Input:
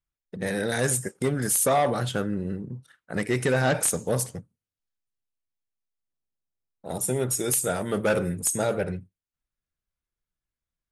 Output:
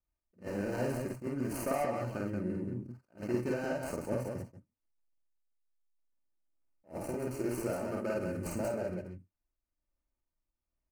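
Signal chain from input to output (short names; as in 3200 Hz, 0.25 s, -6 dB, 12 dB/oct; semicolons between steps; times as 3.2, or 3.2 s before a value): median filter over 25 samples; comb 3.3 ms, depth 48%; compressor, threshold -31 dBFS, peak gain reduction 12.5 dB; tremolo 1.2 Hz, depth 31%; vibrato 1.4 Hz 27 cents; Butterworth band-stop 3500 Hz, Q 2.4; on a send: loudspeakers at several distances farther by 17 m -1 dB, 63 m -4 dB; on the sum: attack slew limiter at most 260 dB/s; gain -1.5 dB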